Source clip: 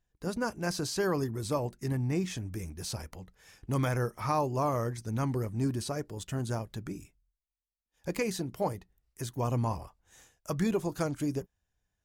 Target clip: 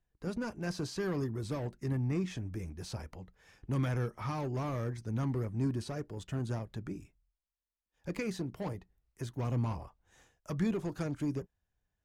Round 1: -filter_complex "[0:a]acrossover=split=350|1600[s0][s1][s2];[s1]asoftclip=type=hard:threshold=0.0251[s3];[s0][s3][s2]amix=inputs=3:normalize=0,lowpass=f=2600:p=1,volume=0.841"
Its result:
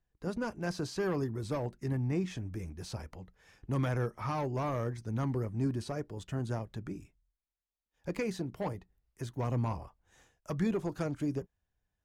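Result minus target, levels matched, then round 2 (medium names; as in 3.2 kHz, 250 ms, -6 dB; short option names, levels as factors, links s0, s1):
hard clipper: distortion -5 dB
-filter_complex "[0:a]acrossover=split=350|1600[s0][s1][s2];[s1]asoftclip=type=hard:threshold=0.0106[s3];[s0][s3][s2]amix=inputs=3:normalize=0,lowpass=f=2600:p=1,volume=0.841"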